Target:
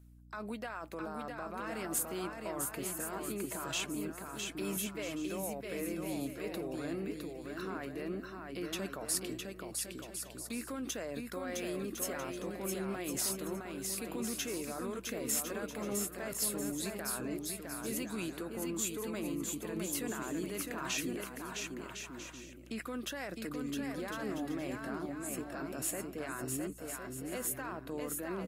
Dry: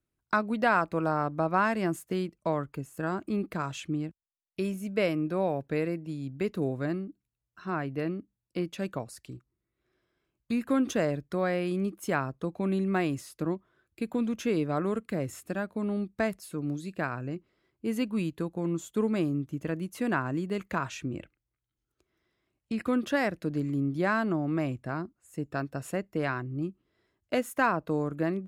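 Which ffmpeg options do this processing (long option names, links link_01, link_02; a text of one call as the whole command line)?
ffmpeg -i in.wav -filter_complex "[0:a]highpass=280,highshelf=frequency=4000:gain=-3,areverse,acompressor=threshold=-38dB:ratio=5,areverse,alimiter=level_in=16.5dB:limit=-24dB:level=0:latency=1:release=47,volume=-16.5dB,crystalizer=i=5.5:c=0,aecho=1:1:660|1056|1294|1436|1522:0.631|0.398|0.251|0.158|0.1,asplit=2[link_01][link_02];[link_02]adynamicsmooth=sensitivity=7:basefreq=2700,volume=-1.5dB[link_03];[link_01][link_03]amix=inputs=2:normalize=0,aeval=exprs='val(0)+0.00126*(sin(2*PI*60*n/s)+sin(2*PI*2*60*n/s)/2+sin(2*PI*3*60*n/s)/3+sin(2*PI*4*60*n/s)/4+sin(2*PI*5*60*n/s)/5)':channel_layout=same,volume=2dB" -ar 48000 -c:a libvorbis -b:a 48k out.ogg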